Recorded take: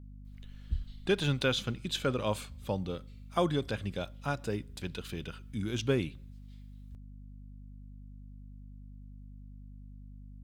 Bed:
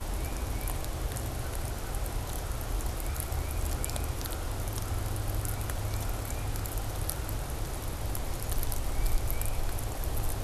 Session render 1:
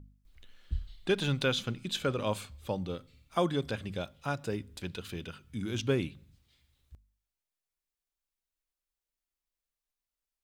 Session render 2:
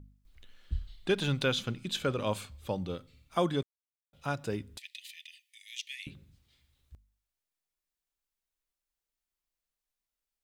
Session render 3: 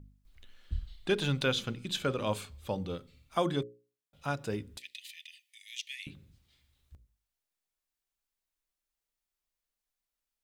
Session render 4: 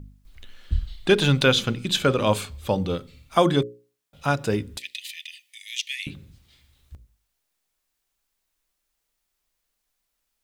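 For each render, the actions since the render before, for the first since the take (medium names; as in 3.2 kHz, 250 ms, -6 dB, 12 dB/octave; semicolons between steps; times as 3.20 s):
de-hum 50 Hz, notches 5
3.63–4.13 s: mute; 4.78–6.07 s: Chebyshev high-pass 1.8 kHz, order 10
hum notches 60/120/180/240/300/360/420/480/540 Hz
trim +11 dB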